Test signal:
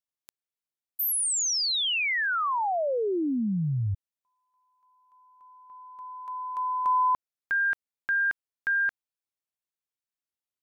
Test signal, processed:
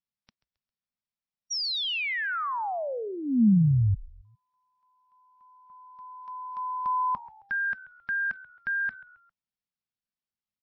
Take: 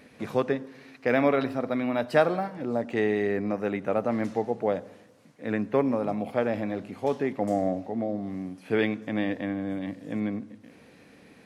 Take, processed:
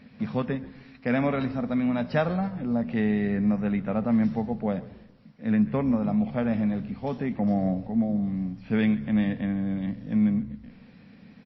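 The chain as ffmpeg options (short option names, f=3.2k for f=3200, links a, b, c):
-filter_complex "[0:a]lowshelf=f=270:t=q:w=3:g=6.5,asplit=4[a][b][c][d];[b]adelay=134,afreqshift=-71,volume=-19dB[e];[c]adelay=268,afreqshift=-142,volume=-27dB[f];[d]adelay=402,afreqshift=-213,volume=-34.9dB[g];[a][e][f][g]amix=inputs=4:normalize=0,volume=-2.5dB" -ar 16000 -c:a libmp3lame -b:a 24k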